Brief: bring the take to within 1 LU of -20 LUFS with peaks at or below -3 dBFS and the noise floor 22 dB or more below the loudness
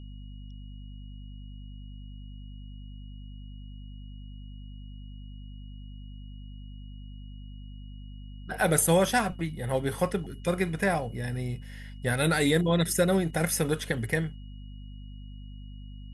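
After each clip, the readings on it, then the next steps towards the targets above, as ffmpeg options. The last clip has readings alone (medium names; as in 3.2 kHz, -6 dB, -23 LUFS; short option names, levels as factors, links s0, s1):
hum 50 Hz; highest harmonic 250 Hz; hum level -40 dBFS; steady tone 2.9 kHz; tone level -59 dBFS; loudness -27.5 LUFS; peak level -8.0 dBFS; loudness target -20.0 LUFS
-> -af "bandreject=f=50:t=h:w=6,bandreject=f=100:t=h:w=6,bandreject=f=150:t=h:w=6,bandreject=f=200:t=h:w=6,bandreject=f=250:t=h:w=6"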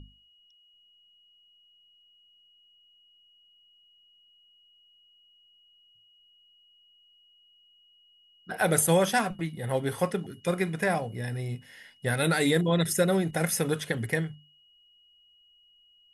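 hum not found; steady tone 2.9 kHz; tone level -59 dBFS
-> -af "bandreject=f=2900:w=30"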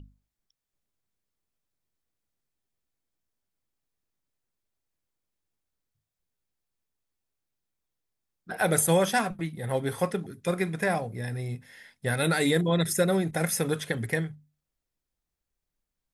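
steady tone not found; loudness -27.5 LUFS; peak level -9.0 dBFS; loudness target -20.0 LUFS
-> -af "volume=2.37,alimiter=limit=0.708:level=0:latency=1"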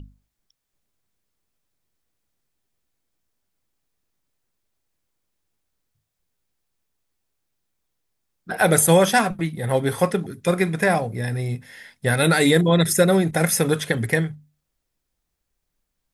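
loudness -20.0 LUFS; peak level -3.0 dBFS; noise floor -79 dBFS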